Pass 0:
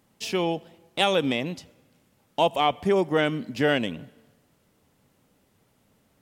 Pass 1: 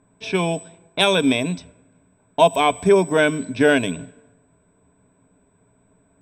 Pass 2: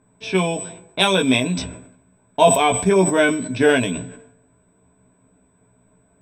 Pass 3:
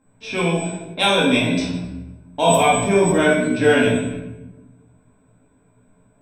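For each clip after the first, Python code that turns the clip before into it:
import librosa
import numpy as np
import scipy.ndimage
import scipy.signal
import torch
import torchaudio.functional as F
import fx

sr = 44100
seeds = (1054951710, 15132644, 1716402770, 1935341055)

y1 = x + 10.0 ** (-44.0 / 20.0) * np.sin(2.0 * np.pi * 8000.0 * np.arange(len(x)) / sr)
y1 = fx.env_lowpass(y1, sr, base_hz=1300.0, full_db=-22.0)
y1 = fx.ripple_eq(y1, sr, per_octave=1.6, db=11)
y1 = y1 * 10.0 ** (4.5 / 20.0)
y2 = fx.doubler(y1, sr, ms=16.0, db=-4.0)
y2 = fx.sustainer(y2, sr, db_per_s=77.0)
y2 = y2 * 10.0 ** (-1.0 / 20.0)
y3 = fx.comb_fb(y2, sr, f0_hz=88.0, decay_s=0.51, harmonics='odd', damping=0.0, mix_pct=50)
y3 = fx.room_shoebox(y3, sr, seeds[0], volume_m3=380.0, walls='mixed', distance_m=2.2)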